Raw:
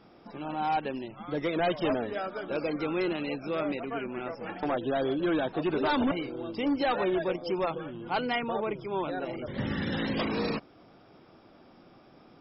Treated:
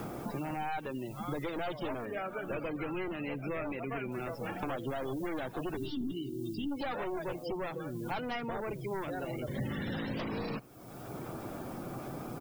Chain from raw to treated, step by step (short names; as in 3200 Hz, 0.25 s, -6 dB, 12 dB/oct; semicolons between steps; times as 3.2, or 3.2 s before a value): one-sided fold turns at -28 dBFS; bell 130 Hz +7.5 dB 0.36 oct; spectral gate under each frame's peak -25 dB strong; added noise blue -62 dBFS; 2.05–4.12 resonant high shelf 3000 Hz -6.5 dB, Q 3; 5.77–6.72 spectral gain 410–2700 Hz -28 dB; speakerphone echo 80 ms, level -25 dB; three-band squash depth 100%; gain -5.5 dB